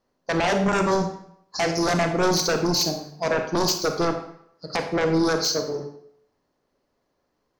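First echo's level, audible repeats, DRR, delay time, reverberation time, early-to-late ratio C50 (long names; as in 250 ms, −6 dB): no echo audible, no echo audible, 5.0 dB, no echo audible, 0.70 s, 7.0 dB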